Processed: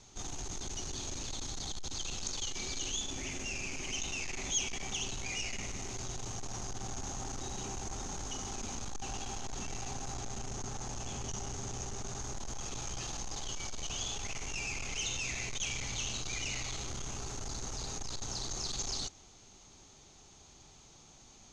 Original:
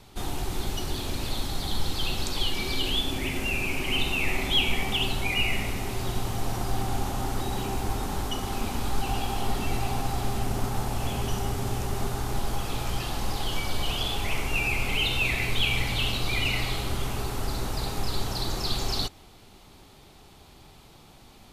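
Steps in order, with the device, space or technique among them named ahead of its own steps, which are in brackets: overdriven synthesiser ladder filter (saturation -27.5 dBFS, distortion -10 dB; four-pole ladder low-pass 6.7 kHz, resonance 85%); 10.14–12.19 s: Bessel low-pass 11 kHz; trim +4.5 dB

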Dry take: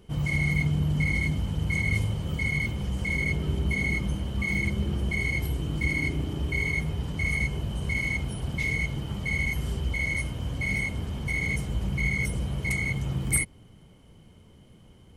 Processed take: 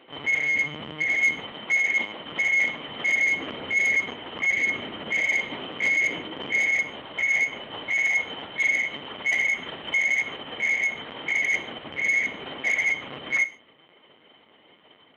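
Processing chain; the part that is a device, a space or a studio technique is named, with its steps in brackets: talking toy (LPC vocoder at 8 kHz; high-pass 570 Hz 12 dB/octave; peaking EQ 1.9 kHz +5 dB 0.23 oct; saturation -25 dBFS, distortion -17 dB); 1.52–2.20 s: high-pass 170 Hz 12 dB/octave; gated-style reverb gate 170 ms falling, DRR 11 dB; trim +8 dB

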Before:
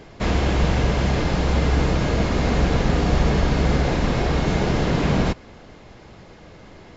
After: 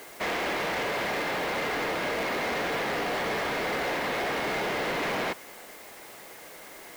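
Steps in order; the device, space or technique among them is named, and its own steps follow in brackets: drive-through speaker (band-pass 460–3600 Hz; peaking EQ 2 kHz +5.5 dB 0.47 oct; hard clipper -26.5 dBFS, distortion -10 dB; white noise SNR 19 dB)

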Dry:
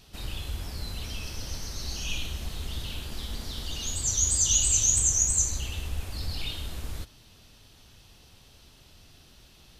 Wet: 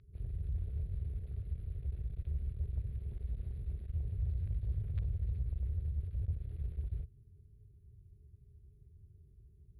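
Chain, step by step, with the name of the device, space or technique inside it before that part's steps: FFT band-reject 440–10000 Hz; scooped metal amplifier (valve stage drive 33 dB, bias 0.65; cabinet simulation 80–4000 Hz, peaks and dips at 180 Hz -6 dB, 250 Hz -8 dB, 870 Hz -7 dB, 3 kHz -5 dB; amplifier tone stack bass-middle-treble 10-0-10); trim +18 dB

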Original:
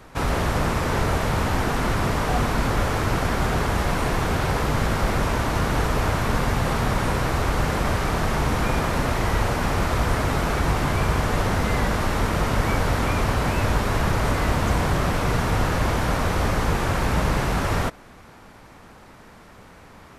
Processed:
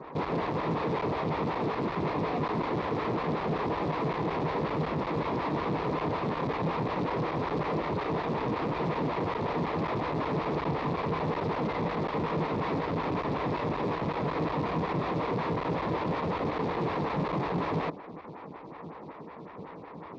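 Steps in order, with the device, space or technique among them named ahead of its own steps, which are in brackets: vibe pedal into a guitar amplifier (lamp-driven phase shifter 5.4 Hz; valve stage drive 39 dB, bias 0.8; cabinet simulation 95–3700 Hz, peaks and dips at 160 Hz +9 dB, 310 Hz +6 dB, 450 Hz +6 dB, 1 kHz +6 dB, 1.5 kHz -8 dB, 3 kHz -7 dB); trim +8 dB

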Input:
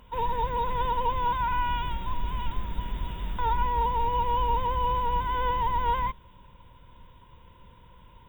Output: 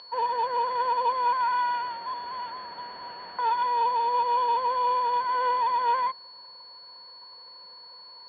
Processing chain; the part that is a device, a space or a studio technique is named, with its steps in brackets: toy sound module (decimation joined by straight lines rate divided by 6×; class-D stage that switches slowly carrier 4.4 kHz; cabinet simulation 510–4900 Hz, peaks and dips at 510 Hz +5 dB, 730 Hz +7 dB, 1.1 kHz +4 dB, 1.7 kHz +9 dB, 3.1 kHz +9 dB, 4.4 kHz -9 dB)

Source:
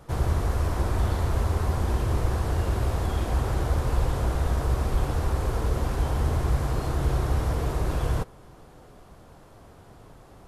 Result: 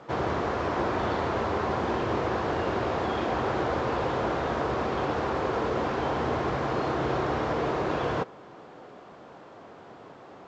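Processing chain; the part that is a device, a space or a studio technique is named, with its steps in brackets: telephone (band-pass 250–3300 Hz; trim +6 dB; A-law 128 kbps 16 kHz)

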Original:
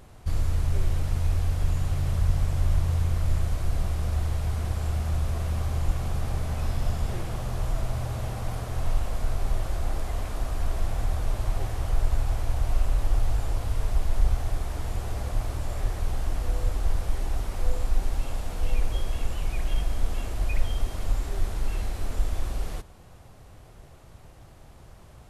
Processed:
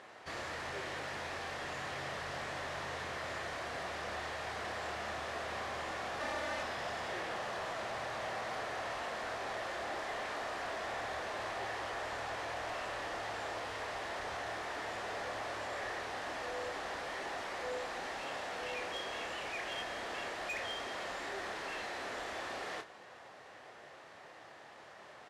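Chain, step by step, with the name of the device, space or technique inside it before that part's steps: intercom (band-pass 480–4700 Hz; peaking EQ 1.8 kHz +8 dB 0.31 oct; saturation -37.5 dBFS, distortion -16 dB; doubling 28 ms -8 dB); 6.20–6.63 s: comb 3.4 ms, depth 84%; trim +3 dB

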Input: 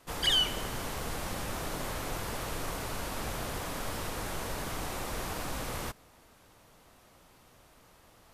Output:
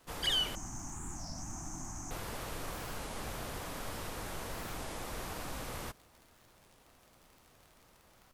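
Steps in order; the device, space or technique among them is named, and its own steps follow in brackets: 0.55–2.11 s: FFT filter 330 Hz 0 dB, 470 Hz -30 dB, 750 Hz -2 dB, 2.5 kHz -16 dB, 3.9 kHz -30 dB, 6.3 kHz +12 dB, 11 kHz -15 dB; warped LP (warped record 33 1/3 rpm, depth 250 cents; crackle 71 per s -43 dBFS; pink noise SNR 30 dB); trim -5 dB

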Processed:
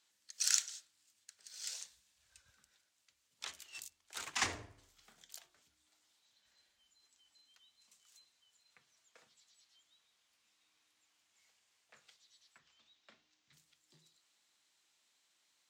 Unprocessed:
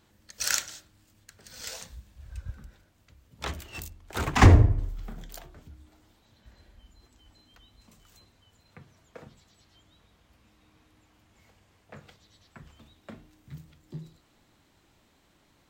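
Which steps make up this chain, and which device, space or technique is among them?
piezo pickup straight into a mixer (low-pass 7.6 kHz 12 dB/octave; differentiator); 12.58–13.53 s: low-pass 6.2 kHz 24 dB/octave

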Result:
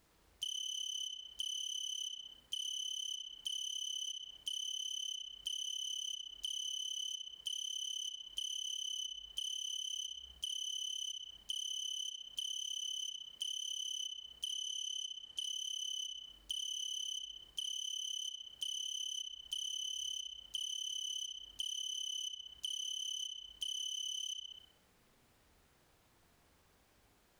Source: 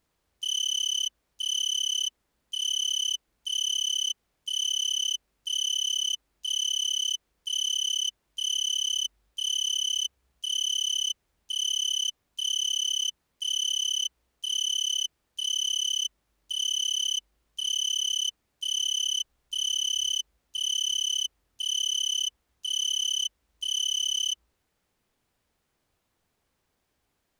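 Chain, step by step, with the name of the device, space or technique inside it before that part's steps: 14.54–15.42 s: low-pass 11 kHz 12 dB/octave; filtered feedback delay 63 ms, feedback 52%, low-pass 3.8 kHz, level -4 dB; serial compression, peaks first (compression, threshold -38 dBFS, peak gain reduction 14.5 dB; compression 2:1, threshold -48 dBFS, peak gain reduction 7 dB); trim +5 dB

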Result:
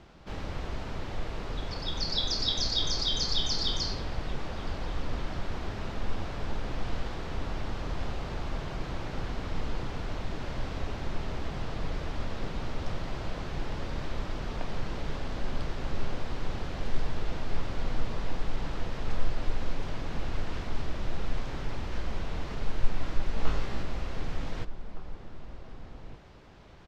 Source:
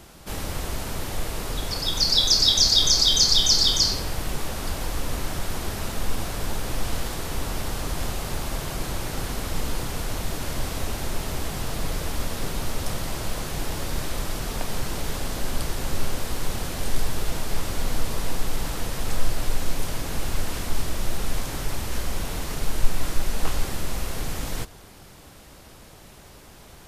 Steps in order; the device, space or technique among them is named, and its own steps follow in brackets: shout across a valley (distance through air 190 m; echo from a far wall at 260 m, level -10 dB); 23.35–23.83 s: flutter echo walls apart 3 m, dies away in 0.23 s; trim -5 dB

